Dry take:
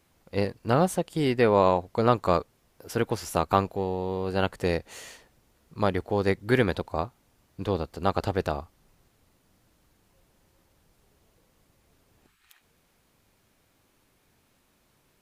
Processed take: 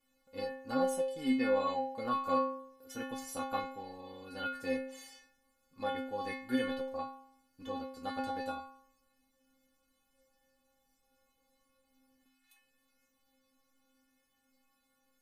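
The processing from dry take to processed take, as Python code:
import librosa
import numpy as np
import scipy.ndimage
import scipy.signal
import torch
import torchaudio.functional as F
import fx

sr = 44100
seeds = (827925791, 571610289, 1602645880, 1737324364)

y = fx.stiff_resonator(x, sr, f0_hz=260.0, decay_s=0.71, stiffness=0.008)
y = y * librosa.db_to_amplitude(9.0)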